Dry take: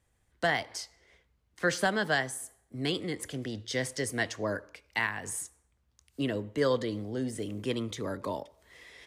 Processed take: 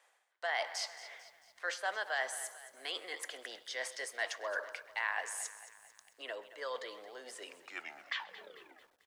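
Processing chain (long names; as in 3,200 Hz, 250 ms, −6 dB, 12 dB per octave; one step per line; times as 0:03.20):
turntable brake at the end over 1.77 s
reversed playback
downward compressor 6 to 1, threshold −44 dBFS, peak gain reduction 20.5 dB
reversed playback
high-pass filter 620 Hz 24 dB per octave
high-shelf EQ 6,400 Hz −12 dB
on a send: single-tap delay 131 ms −21.5 dB
on the sum: feedback echo at a low word length 222 ms, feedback 55%, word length 12 bits, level −14.5 dB
level +12 dB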